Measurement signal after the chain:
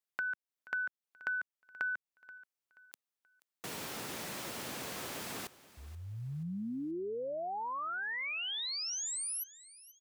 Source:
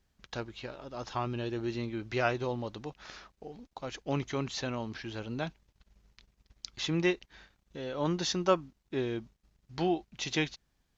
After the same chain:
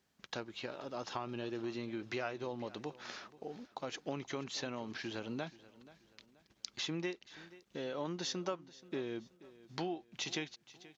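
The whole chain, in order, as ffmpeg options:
-filter_complex "[0:a]highpass=170,acompressor=threshold=-38dB:ratio=4,asplit=2[a][b];[b]aecho=0:1:480|960|1440:0.112|0.0404|0.0145[c];[a][c]amix=inputs=2:normalize=0,volume=1dB"

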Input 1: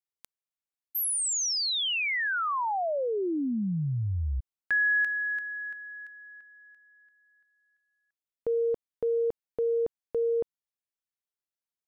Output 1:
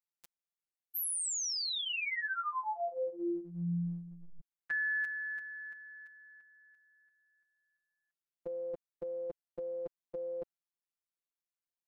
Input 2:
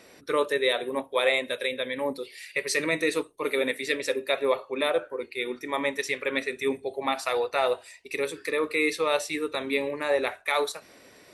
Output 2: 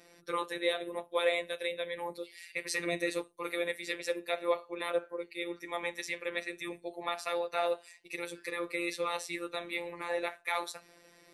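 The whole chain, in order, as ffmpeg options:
-af "bandreject=f=3.2k:w=29,afftfilt=real='hypot(re,im)*cos(PI*b)':imag='0':win_size=1024:overlap=0.75,volume=-3.5dB"

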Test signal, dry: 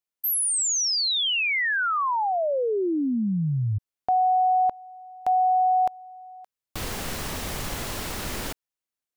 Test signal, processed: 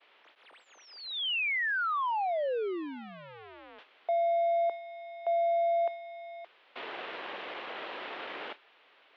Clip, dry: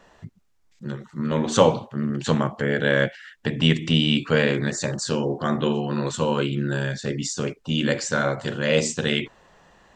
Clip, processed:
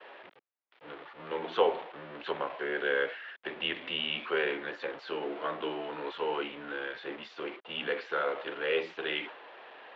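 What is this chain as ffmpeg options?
-af "aeval=exprs='val(0)+0.5*0.0473*sgn(val(0))':c=same,agate=range=-33dB:threshold=-28dB:ratio=3:release=124:detection=peak,highpass=f=440:t=q:w=0.5412,highpass=f=440:t=q:w=1.307,lowpass=f=3.4k:t=q:w=0.5176,lowpass=f=3.4k:t=q:w=0.7071,lowpass=f=3.4k:t=q:w=1.932,afreqshift=-61,volume=-8.5dB"

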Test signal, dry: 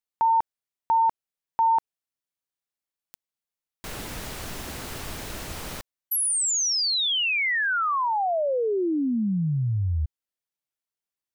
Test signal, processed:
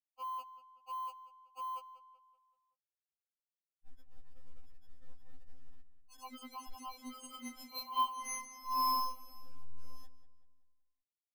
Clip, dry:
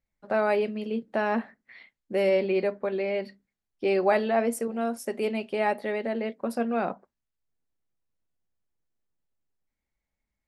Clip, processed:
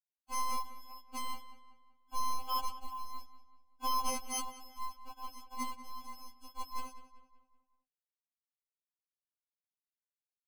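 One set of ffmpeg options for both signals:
-filter_complex "[0:a]afftfilt=real='re*gte(hypot(re,im),0.1)':imag='im*gte(hypot(re,im),0.1)':win_size=1024:overlap=0.75,aemphasis=mode=reproduction:type=50kf,anlmdn=0.00398,equalizer=f=220:t=o:w=0.88:g=3,afftfilt=real='hypot(re,im)*cos(PI*b)':imag='0':win_size=512:overlap=0.75,acrusher=samples=24:mix=1:aa=0.000001,aeval=exprs='0.178*(cos(1*acos(clip(val(0)/0.178,-1,1)))-cos(1*PI/2))+0.0447*(cos(7*acos(clip(val(0)/0.178,-1,1)))-cos(7*PI/2))':c=same,acrusher=bits=5:mode=log:mix=0:aa=0.000001,asplit=2[a][b];[b]adelay=190,lowpass=f=3.5k:p=1,volume=-13dB,asplit=2[c][d];[d]adelay=190,lowpass=f=3.5k:p=1,volume=0.47,asplit=2[e][f];[f]adelay=190,lowpass=f=3.5k:p=1,volume=0.47,asplit=2[g][h];[h]adelay=190,lowpass=f=3.5k:p=1,volume=0.47,asplit=2[i][j];[j]adelay=190,lowpass=f=3.5k:p=1,volume=0.47[k];[a][c][e][g][i][k]amix=inputs=6:normalize=0,afftfilt=real='re*3.46*eq(mod(b,12),0)':imag='im*3.46*eq(mod(b,12),0)':win_size=2048:overlap=0.75,volume=-3dB"

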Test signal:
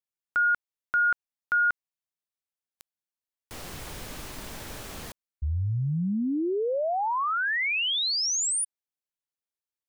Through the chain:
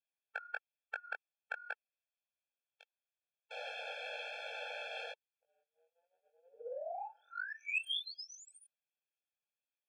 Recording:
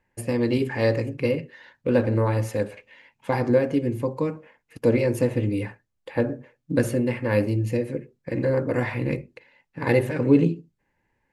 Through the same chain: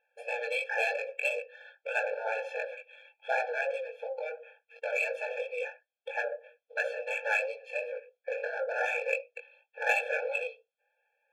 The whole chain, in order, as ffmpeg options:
-filter_complex "[0:a]afftfilt=real='re*lt(hypot(re,im),0.355)':imag='im*lt(hypot(re,im),0.355)':win_size=1024:overlap=0.75,flanger=delay=18.5:depth=3.7:speed=2.9,lowpass=f=2.9k:t=q:w=4.9,asplit=2[a][b];[b]adynamicsmooth=sensitivity=3.5:basefreq=1.4k,volume=-3dB[c];[a][c]amix=inputs=2:normalize=0,afftfilt=real='re*eq(mod(floor(b*sr/1024/450),2),1)':imag='im*eq(mod(floor(b*sr/1024/450),2),1)':win_size=1024:overlap=0.75"

